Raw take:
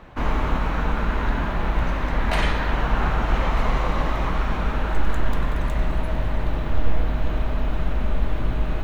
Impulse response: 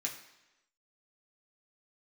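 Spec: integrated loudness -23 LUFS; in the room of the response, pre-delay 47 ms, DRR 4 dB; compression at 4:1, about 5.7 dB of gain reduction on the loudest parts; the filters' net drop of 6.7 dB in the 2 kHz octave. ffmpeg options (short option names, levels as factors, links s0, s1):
-filter_complex "[0:a]equalizer=f=2000:t=o:g=-9,acompressor=threshold=0.126:ratio=4,asplit=2[s0][s1];[1:a]atrim=start_sample=2205,adelay=47[s2];[s1][s2]afir=irnorm=-1:irlink=0,volume=0.562[s3];[s0][s3]amix=inputs=2:normalize=0,volume=1.58"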